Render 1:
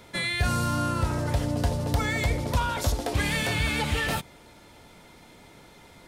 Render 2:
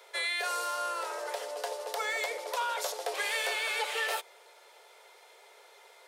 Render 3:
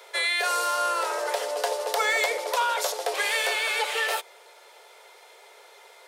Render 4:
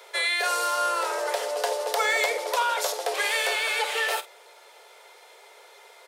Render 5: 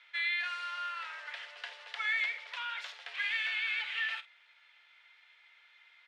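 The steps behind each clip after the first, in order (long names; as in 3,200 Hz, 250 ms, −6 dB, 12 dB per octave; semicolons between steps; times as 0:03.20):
Butterworth high-pass 400 Hz 72 dB per octave; level −3 dB
speech leveller 2 s; level +7 dB
double-tracking delay 49 ms −13.5 dB
flat-topped band-pass 2,300 Hz, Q 1.3; level −5.5 dB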